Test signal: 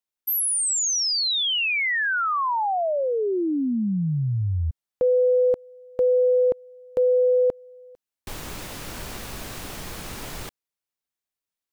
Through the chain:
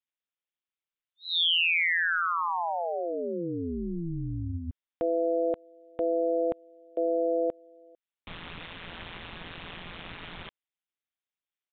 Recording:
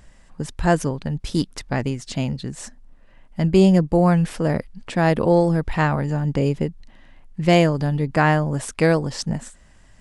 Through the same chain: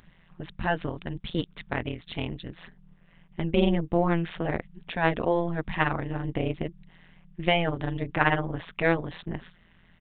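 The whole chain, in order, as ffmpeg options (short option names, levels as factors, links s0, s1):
-af "tremolo=f=170:d=1,aresample=8000,aresample=44100,tiltshelf=f=1300:g=-5"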